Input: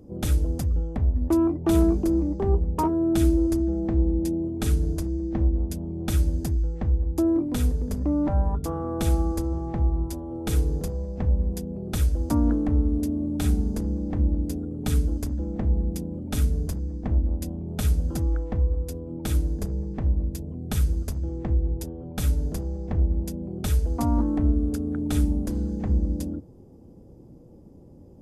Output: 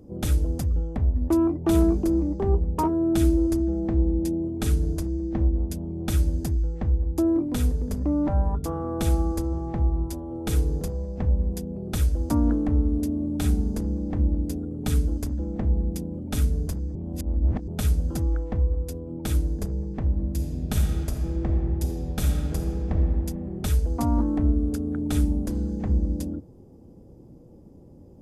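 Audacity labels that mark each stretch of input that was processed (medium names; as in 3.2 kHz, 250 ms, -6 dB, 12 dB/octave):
16.950000	17.680000	reverse
20.040000	22.950000	reverb throw, RT60 2.5 s, DRR 2 dB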